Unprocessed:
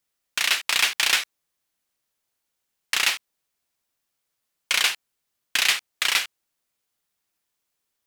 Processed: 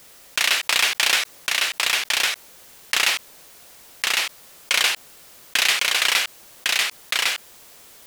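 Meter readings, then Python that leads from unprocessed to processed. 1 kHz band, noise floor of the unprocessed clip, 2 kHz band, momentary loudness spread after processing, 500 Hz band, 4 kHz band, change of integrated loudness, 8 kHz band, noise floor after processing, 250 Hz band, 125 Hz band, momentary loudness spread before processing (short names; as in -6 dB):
+5.5 dB, -80 dBFS, +4.5 dB, 10 LU, +8.0 dB, +4.5 dB, +1.5 dB, +4.5 dB, -48 dBFS, +6.0 dB, n/a, 12 LU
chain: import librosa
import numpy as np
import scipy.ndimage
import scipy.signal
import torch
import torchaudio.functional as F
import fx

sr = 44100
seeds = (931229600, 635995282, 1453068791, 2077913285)

y = fx.peak_eq(x, sr, hz=530.0, db=4.5, octaves=1.1)
y = y + 10.0 ** (-4.0 / 20.0) * np.pad(y, (int(1105 * sr / 1000.0), 0))[:len(y)]
y = fx.env_flatten(y, sr, amount_pct=50)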